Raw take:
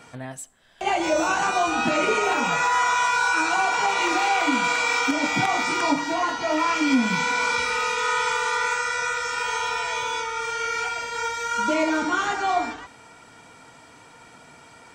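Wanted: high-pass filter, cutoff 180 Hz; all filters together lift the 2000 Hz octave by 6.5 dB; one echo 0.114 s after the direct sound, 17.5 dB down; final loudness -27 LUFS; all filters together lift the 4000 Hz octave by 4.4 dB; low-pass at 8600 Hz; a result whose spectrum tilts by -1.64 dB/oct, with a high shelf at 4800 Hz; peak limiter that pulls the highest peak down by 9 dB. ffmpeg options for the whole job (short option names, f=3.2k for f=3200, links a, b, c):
-af "highpass=180,lowpass=8.6k,equalizer=f=2k:t=o:g=8.5,equalizer=f=4k:t=o:g=6,highshelf=f=4.8k:g=-7,alimiter=limit=-15.5dB:level=0:latency=1,aecho=1:1:114:0.133,volume=-4dB"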